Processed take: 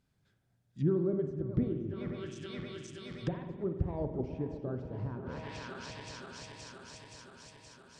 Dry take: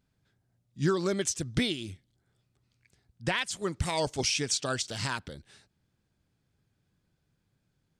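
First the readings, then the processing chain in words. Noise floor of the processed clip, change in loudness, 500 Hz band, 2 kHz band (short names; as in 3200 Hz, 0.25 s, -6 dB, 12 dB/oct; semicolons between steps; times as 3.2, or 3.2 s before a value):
-74 dBFS, -6.5 dB, -2.0 dB, -13.5 dB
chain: regenerating reverse delay 0.261 s, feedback 82%, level -12 dB; treble ducked by the level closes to 430 Hz, closed at -29.5 dBFS; spring tank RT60 1.1 s, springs 47 ms, chirp 50 ms, DRR 7 dB; gain -1.5 dB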